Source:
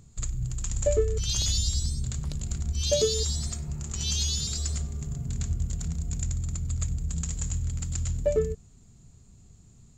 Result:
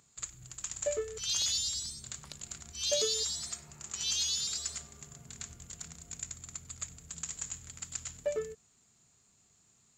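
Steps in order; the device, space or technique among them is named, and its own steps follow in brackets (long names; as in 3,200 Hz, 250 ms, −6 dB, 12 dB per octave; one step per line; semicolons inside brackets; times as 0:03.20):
filter by subtraction (in parallel: low-pass filter 1,500 Hz 12 dB per octave + polarity inversion)
on the sum: level −2.5 dB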